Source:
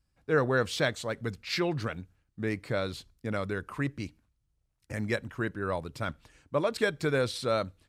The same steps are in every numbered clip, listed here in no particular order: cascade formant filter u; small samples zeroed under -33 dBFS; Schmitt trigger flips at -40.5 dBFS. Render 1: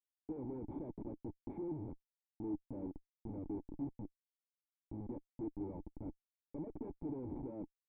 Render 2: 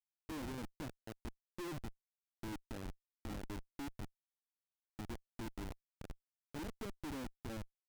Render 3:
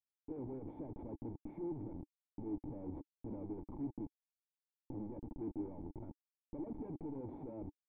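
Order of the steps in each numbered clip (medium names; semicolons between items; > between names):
small samples zeroed > Schmitt trigger > cascade formant filter; small samples zeroed > cascade formant filter > Schmitt trigger; Schmitt trigger > small samples zeroed > cascade formant filter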